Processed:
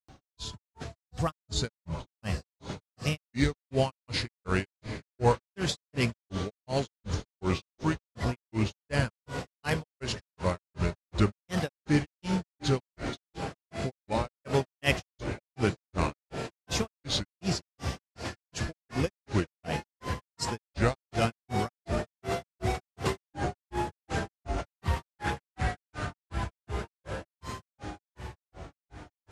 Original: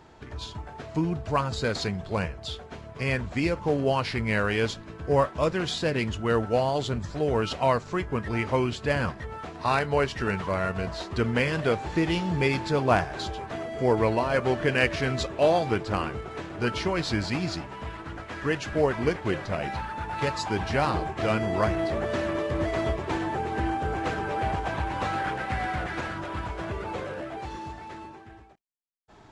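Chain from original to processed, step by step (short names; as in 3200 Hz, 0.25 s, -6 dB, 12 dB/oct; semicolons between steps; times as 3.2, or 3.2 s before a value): high shelf 4900 Hz +7 dB; diffused feedback echo 0.671 s, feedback 77%, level -13 dB; grains 0.215 s, grains 2.7/s, pitch spread up and down by 3 st; tone controls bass +6 dB, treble +6 dB; gain -1.5 dB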